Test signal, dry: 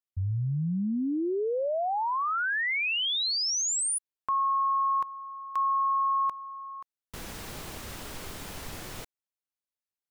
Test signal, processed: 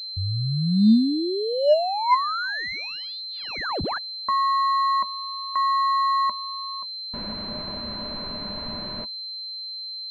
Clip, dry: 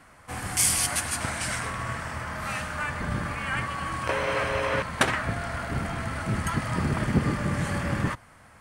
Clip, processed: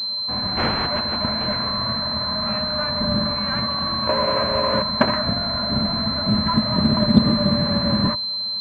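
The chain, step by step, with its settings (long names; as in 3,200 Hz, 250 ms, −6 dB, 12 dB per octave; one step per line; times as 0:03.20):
hollow resonant body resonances 220/600/1,000 Hz, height 14 dB, ringing for 70 ms
switching amplifier with a slow clock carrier 4,100 Hz
level +1.5 dB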